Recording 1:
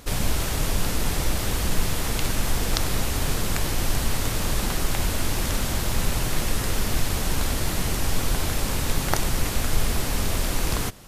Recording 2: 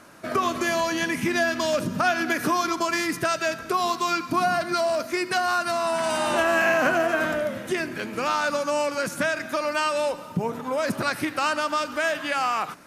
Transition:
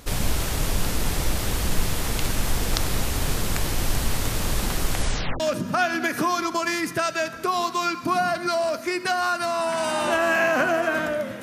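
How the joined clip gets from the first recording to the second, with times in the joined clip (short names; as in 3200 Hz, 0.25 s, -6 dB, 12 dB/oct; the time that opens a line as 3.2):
recording 1
4.92 tape stop 0.48 s
5.4 switch to recording 2 from 1.66 s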